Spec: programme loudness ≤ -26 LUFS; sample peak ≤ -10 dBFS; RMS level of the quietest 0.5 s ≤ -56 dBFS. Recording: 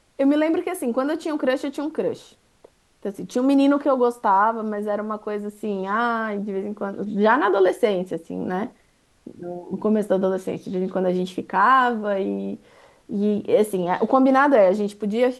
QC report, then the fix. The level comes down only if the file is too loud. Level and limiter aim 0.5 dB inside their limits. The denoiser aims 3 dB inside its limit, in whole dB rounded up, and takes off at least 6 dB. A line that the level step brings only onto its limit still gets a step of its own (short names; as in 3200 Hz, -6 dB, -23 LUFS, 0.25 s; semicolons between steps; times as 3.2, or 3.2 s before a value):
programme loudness -21.5 LUFS: fail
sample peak -4.5 dBFS: fail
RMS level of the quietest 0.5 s -60 dBFS: OK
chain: gain -5 dB; limiter -10.5 dBFS